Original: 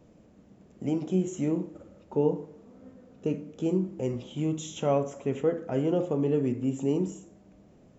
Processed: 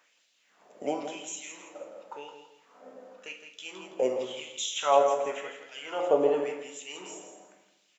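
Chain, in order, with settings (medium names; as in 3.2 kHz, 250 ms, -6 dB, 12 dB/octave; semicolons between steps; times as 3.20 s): LFO high-pass sine 0.93 Hz 560–3700 Hz; feedback delay 165 ms, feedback 29%, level -8.5 dB; on a send at -7 dB: reverberation RT60 0.80 s, pre-delay 7 ms; on the sum: trim +4 dB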